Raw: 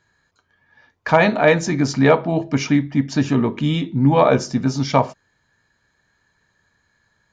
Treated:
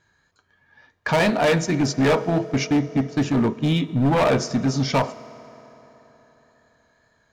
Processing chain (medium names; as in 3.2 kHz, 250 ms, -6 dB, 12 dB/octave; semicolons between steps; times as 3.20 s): 1.19–3.89 s: gate -22 dBFS, range -17 dB; hard clipper -15 dBFS, distortion -8 dB; wow and flutter 27 cents; reverberation RT60 4.1 s, pre-delay 4 ms, DRR 16 dB